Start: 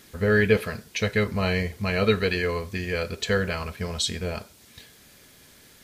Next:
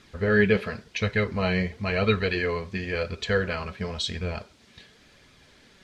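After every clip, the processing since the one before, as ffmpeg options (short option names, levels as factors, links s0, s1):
-af "lowpass=4600,flanger=delay=0.8:depth=4.6:regen=56:speed=0.94:shape=sinusoidal,volume=1.5"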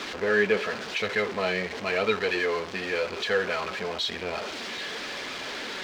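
-filter_complex "[0:a]aeval=exprs='val(0)+0.5*0.0562*sgn(val(0))':c=same,acrossover=split=260 5800:gain=0.0891 1 0.0708[s0][s1][s2];[s0][s1][s2]amix=inputs=3:normalize=0,volume=0.794"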